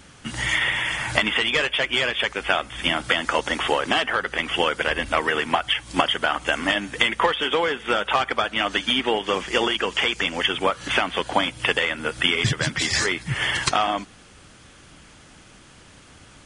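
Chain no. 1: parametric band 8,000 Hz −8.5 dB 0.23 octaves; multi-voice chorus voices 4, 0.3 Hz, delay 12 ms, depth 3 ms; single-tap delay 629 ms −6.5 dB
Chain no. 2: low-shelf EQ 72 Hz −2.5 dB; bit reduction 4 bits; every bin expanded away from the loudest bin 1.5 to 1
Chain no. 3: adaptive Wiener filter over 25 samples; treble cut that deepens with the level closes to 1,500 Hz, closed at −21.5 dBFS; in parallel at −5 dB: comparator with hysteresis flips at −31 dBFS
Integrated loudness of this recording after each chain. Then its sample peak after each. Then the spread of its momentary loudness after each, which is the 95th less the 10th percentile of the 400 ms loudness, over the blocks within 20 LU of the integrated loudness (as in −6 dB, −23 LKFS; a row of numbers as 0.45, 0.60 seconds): −24.5, −22.5, −25.0 LKFS; −6.5, −3.0, −5.0 dBFS; 3, 4, 4 LU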